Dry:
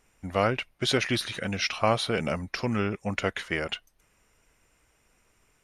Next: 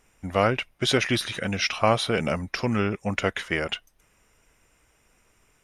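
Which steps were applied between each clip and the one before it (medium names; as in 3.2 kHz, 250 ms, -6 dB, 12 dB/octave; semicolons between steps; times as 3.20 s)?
band-stop 4.3 kHz, Q 14; trim +3 dB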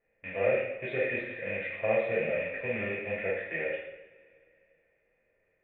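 rattle on loud lows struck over -32 dBFS, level -12 dBFS; cascade formant filter e; two-slope reverb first 0.79 s, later 2.9 s, from -22 dB, DRR -7.5 dB; trim -3.5 dB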